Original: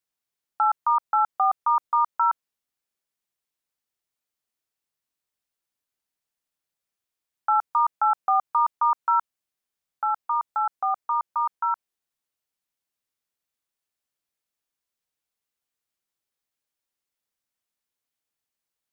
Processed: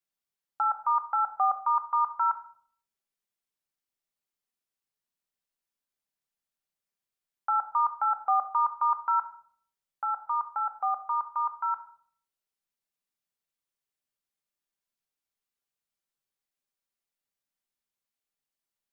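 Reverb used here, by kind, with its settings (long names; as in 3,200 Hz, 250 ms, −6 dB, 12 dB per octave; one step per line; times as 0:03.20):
rectangular room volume 760 cubic metres, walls furnished, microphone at 1.2 metres
level −5.5 dB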